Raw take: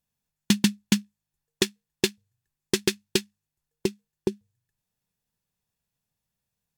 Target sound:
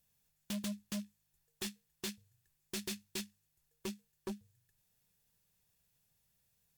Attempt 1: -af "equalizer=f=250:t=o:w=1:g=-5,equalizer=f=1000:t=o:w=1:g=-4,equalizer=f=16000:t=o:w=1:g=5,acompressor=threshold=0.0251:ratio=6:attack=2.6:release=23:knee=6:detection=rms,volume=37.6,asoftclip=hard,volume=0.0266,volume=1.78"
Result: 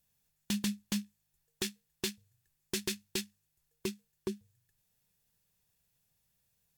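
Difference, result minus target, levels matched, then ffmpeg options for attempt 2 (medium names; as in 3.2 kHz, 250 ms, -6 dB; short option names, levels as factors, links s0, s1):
overload inside the chain: distortion -7 dB
-af "equalizer=f=250:t=o:w=1:g=-5,equalizer=f=1000:t=o:w=1:g=-4,equalizer=f=16000:t=o:w=1:g=5,acompressor=threshold=0.0251:ratio=6:attack=2.6:release=23:knee=6:detection=rms,volume=112,asoftclip=hard,volume=0.00891,volume=1.78"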